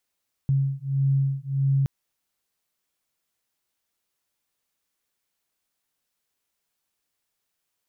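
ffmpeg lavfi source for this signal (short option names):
-f lavfi -i "aevalsrc='0.0668*(sin(2*PI*136*t)+sin(2*PI*137.6*t))':d=1.37:s=44100"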